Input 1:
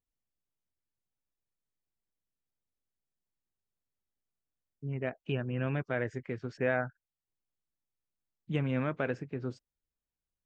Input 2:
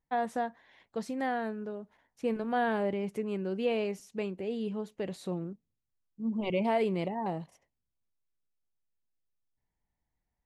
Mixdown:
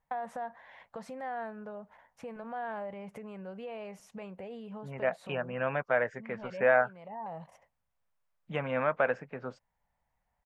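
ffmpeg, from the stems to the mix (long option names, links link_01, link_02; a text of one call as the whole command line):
ffmpeg -i stem1.wav -i stem2.wav -filter_complex "[0:a]highpass=220,volume=0.5dB,asplit=2[link_01][link_02];[1:a]alimiter=level_in=6dB:limit=-24dB:level=0:latency=1:release=68,volume=-6dB,acompressor=threshold=-43dB:ratio=6,volume=2.5dB[link_03];[link_02]apad=whole_len=460905[link_04];[link_03][link_04]sidechaincompress=threshold=-35dB:ratio=8:attack=40:release=853[link_05];[link_01][link_05]amix=inputs=2:normalize=0,firequalizer=gain_entry='entry(190,0);entry(340,-10);entry(530,7);entry(900,9);entry(4000,-5)':delay=0.05:min_phase=1" out.wav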